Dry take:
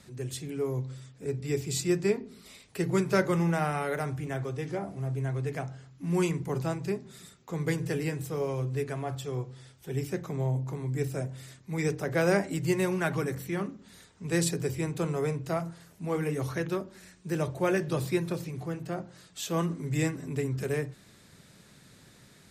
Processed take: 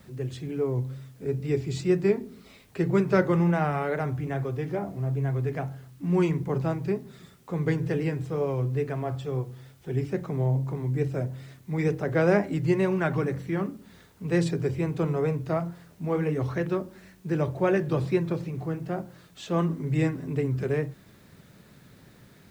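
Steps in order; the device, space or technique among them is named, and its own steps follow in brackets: cassette deck with a dirty head (tape spacing loss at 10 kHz 22 dB; wow and flutter; white noise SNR 38 dB); gain +4.5 dB

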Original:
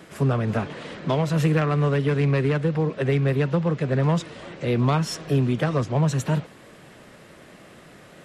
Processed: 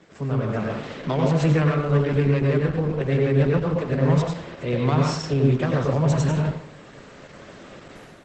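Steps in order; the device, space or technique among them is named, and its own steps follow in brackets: speakerphone in a meeting room (reverb RT60 0.60 s, pre-delay 87 ms, DRR -0.5 dB; AGC gain up to 10 dB; gain -7 dB; Opus 12 kbps 48000 Hz)

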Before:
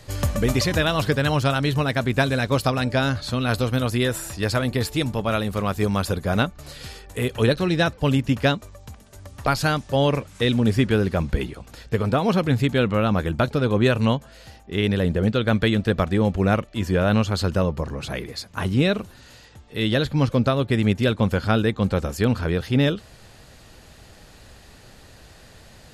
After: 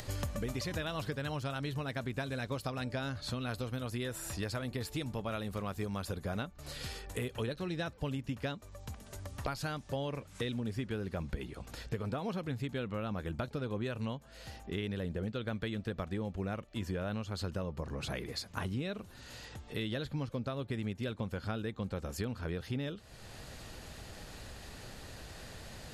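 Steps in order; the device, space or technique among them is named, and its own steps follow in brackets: upward and downward compression (upward compressor, threshold -37 dBFS; compressor 5:1, threshold -31 dBFS, peak gain reduction 16 dB); gain -4 dB

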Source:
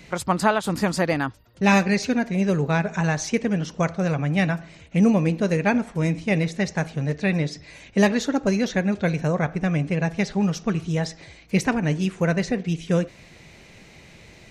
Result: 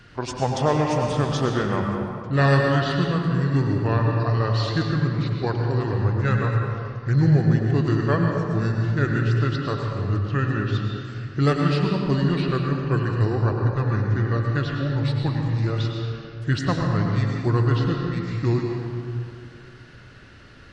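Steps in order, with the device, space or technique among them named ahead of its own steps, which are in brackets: slowed and reverbed (varispeed -30%; reverb RT60 2.3 s, pre-delay 90 ms, DRR 1 dB); gain -2.5 dB

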